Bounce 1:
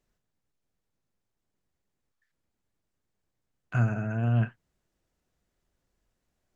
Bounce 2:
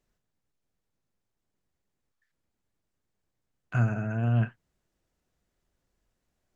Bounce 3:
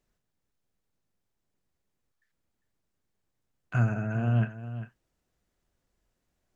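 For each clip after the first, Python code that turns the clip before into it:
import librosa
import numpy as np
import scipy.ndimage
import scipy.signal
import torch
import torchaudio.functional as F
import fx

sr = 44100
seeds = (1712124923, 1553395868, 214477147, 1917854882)

y1 = x
y2 = y1 + 10.0 ** (-12.5 / 20.0) * np.pad(y1, (int(400 * sr / 1000.0), 0))[:len(y1)]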